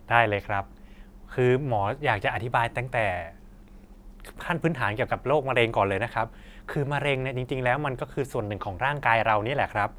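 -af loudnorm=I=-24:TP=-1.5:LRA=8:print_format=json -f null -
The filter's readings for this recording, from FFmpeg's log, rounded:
"input_i" : "-26.3",
"input_tp" : "-2.8",
"input_lra" : "2.6",
"input_thresh" : "-36.9",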